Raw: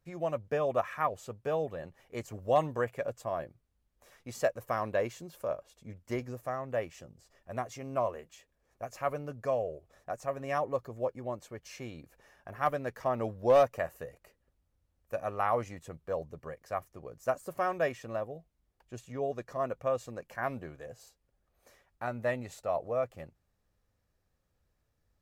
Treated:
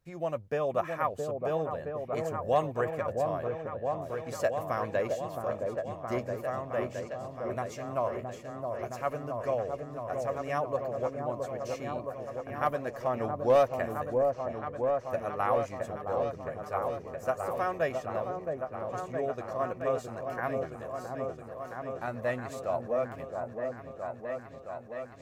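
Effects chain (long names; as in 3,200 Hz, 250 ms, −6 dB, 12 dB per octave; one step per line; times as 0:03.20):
echo whose low-pass opens from repeat to repeat 668 ms, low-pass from 750 Hz, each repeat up 1 octave, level −3 dB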